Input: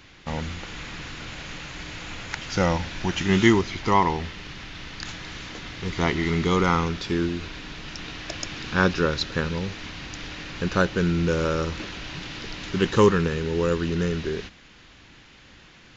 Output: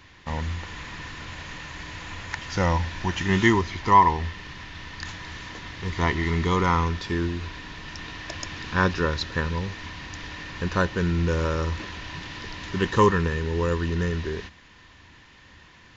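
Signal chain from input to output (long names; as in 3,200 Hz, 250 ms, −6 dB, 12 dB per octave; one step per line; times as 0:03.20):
parametric band 83 Hz +9 dB 0.45 octaves
hollow resonant body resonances 1,000/1,800 Hz, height 11 dB, ringing for 30 ms
level −3 dB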